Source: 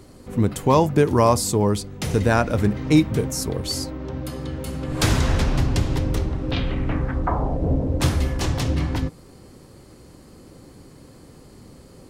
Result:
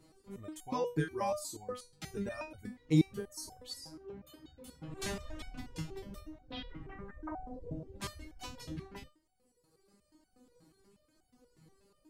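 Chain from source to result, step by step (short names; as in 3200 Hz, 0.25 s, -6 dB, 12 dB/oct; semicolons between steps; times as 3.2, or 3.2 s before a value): reverb removal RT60 1.9 s; stepped resonator 8.3 Hz 160–750 Hz; gain -2 dB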